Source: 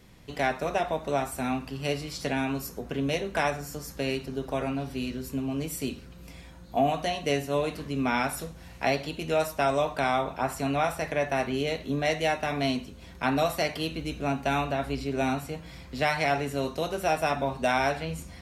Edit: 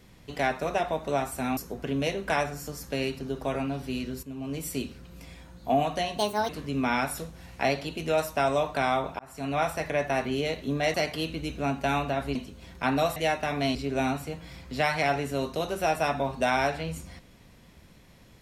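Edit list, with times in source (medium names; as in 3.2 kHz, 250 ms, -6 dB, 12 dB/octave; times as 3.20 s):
1.57–2.64 s: delete
5.30–5.73 s: fade in, from -12.5 dB
7.25–7.71 s: speed 148%
10.41–10.84 s: fade in
12.16–12.75 s: swap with 13.56–14.97 s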